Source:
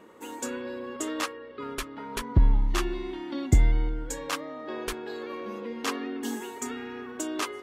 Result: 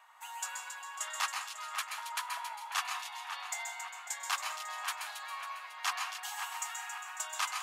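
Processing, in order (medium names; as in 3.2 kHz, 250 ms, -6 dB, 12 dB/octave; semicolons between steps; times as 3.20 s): steep high-pass 710 Hz 72 dB/octave; hard clipper -18.5 dBFS, distortion -44 dB; two-band feedback delay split 2.8 kHz, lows 539 ms, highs 274 ms, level -8 dB; reverberation RT60 0.55 s, pre-delay 128 ms, DRR 3.5 dB; trim -2 dB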